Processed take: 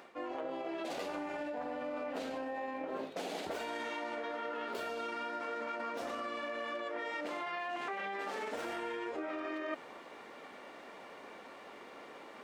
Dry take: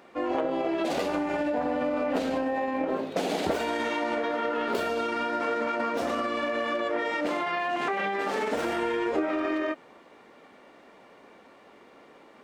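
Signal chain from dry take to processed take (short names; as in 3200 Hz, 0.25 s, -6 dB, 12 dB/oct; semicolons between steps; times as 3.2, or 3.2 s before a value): low shelf 330 Hz -8 dB; reverse; compressor 16:1, threshold -40 dBFS, peak gain reduction 16.5 dB; reverse; gain +4 dB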